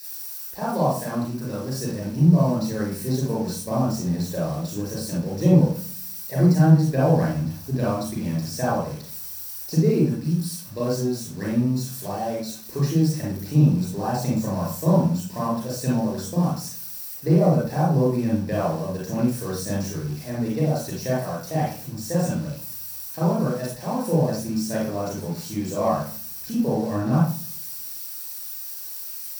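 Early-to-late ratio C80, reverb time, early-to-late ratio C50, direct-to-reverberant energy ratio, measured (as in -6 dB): 6.5 dB, 0.45 s, -0.5 dB, -7.0 dB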